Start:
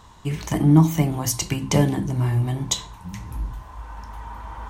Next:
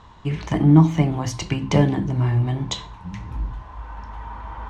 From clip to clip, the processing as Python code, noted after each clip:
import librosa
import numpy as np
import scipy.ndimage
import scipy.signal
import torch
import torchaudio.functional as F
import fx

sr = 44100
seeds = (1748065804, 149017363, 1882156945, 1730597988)

y = scipy.signal.sosfilt(scipy.signal.butter(2, 3700.0, 'lowpass', fs=sr, output='sos'), x)
y = y * librosa.db_to_amplitude(1.5)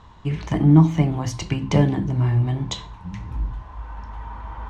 y = fx.low_shelf(x, sr, hz=200.0, db=3.5)
y = y * librosa.db_to_amplitude(-2.0)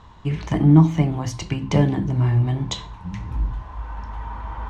y = fx.rider(x, sr, range_db=4, speed_s=2.0)
y = y * librosa.db_to_amplitude(-1.0)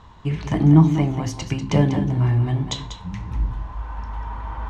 y = x + 10.0 ** (-10.0 / 20.0) * np.pad(x, (int(193 * sr / 1000.0), 0))[:len(x)]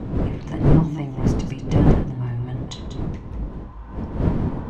y = fx.dmg_wind(x, sr, seeds[0], corner_hz=220.0, level_db=-15.0)
y = y * librosa.db_to_amplitude(-7.5)